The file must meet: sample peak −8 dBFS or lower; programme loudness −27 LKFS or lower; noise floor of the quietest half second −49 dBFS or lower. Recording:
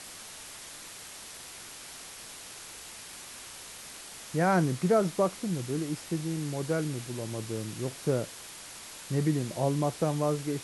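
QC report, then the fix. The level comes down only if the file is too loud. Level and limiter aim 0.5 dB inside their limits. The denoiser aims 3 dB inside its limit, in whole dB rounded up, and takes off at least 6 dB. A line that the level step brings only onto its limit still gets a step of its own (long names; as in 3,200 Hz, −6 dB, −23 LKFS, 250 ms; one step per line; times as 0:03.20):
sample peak −13.5 dBFS: in spec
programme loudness −32.0 LKFS: in spec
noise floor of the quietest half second −45 dBFS: out of spec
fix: broadband denoise 7 dB, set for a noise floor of −45 dBFS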